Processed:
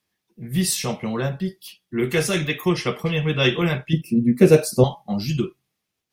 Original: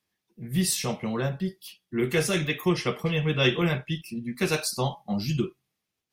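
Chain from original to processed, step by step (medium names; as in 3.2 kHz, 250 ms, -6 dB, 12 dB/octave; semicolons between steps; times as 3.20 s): 3.93–4.84 s: ten-band graphic EQ 125 Hz +9 dB, 250 Hz +8 dB, 500 Hz +12 dB, 1 kHz -7 dB, 4 kHz -8 dB; trim +3.5 dB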